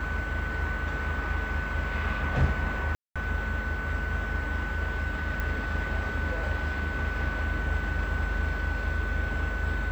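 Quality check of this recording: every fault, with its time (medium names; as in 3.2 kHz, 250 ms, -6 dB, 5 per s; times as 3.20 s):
whine 1.5 kHz -34 dBFS
2.95–3.16 s: dropout 206 ms
5.40 s: pop -18 dBFS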